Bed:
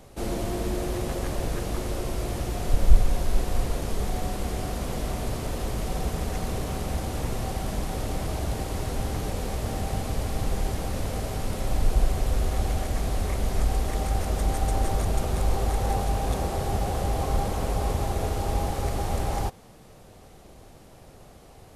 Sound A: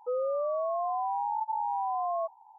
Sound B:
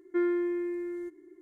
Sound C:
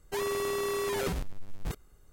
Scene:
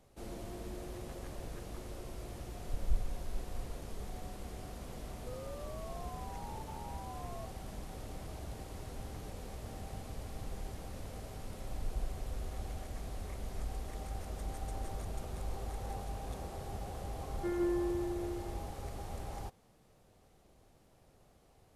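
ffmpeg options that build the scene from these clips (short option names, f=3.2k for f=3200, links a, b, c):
-filter_complex "[0:a]volume=-15.5dB[a];[2:a]aecho=1:1:157.4|204.1:0.891|0.501[b];[1:a]atrim=end=2.58,asetpts=PTS-STARTPTS,volume=-17.5dB,afade=t=in:d=0.004:c=hsin,afade=t=out:st=2.576:d=0.004:c=hsin,adelay=5190[c];[b]atrim=end=1.41,asetpts=PTS-STARTPTS,volume=-9.5dB,afade=t=in:d=0.004:c=hsin,afade=t=out:st=1.406:d=0.004:c=hsin,adelay=17290[d];[a][c][d]amix=inputs=3:normalize=0"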